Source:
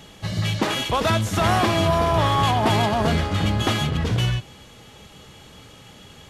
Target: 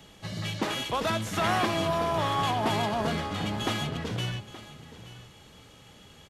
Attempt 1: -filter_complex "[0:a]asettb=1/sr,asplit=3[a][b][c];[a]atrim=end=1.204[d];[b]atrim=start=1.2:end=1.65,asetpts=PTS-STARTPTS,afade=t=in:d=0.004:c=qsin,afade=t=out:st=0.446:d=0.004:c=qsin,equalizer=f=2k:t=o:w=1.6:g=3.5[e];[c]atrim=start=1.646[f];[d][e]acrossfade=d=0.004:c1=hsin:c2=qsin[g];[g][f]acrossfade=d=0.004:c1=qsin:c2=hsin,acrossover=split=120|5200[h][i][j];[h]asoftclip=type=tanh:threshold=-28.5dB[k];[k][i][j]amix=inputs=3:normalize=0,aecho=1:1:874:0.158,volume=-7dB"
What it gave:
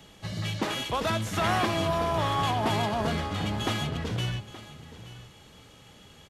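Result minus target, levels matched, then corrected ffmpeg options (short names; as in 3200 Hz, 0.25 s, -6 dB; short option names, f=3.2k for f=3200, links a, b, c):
soft clip: distortion -6 dB
-filter_complex "[0:a]asettb=1/sr,asplit=3[a][b][c];[a]atrim=end=1.204[d];[b]atrim=start=1.2:end=1.65,asetpts=PTS-STARTPTS,afade=t=in:d=0.004:c=qsin,afade=t=out:st=0.446:d=0.004:c=qsin,equalizer=f=2k:t=o:w=1.6:g=3.5[e];[c]atrim=start=1.646[f];[d][e]acrossfade=d=0.004:c1=hsin:c2=qsin[g];[g][f]acrossfade=d=0.004:c1=qsin:c2=hsin,acrossover=split=120|5200[h][i][j];[h]asoftclip=type=tanh:threshold=-38.5dB[k];[k][i][j]amix=inputs=3:normalize=0,aecho=1:1:874:0.158,volume=-7dB"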